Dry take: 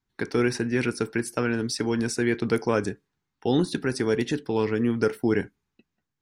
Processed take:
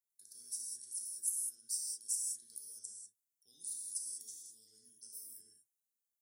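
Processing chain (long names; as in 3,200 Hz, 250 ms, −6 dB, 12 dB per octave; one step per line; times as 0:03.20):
inverse Chebyshev high-pass filter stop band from 2,700 Hz, stop band 60 dB
reverb whose tail is shaped and stops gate 220 ms flat, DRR −2 dB
level +3 dB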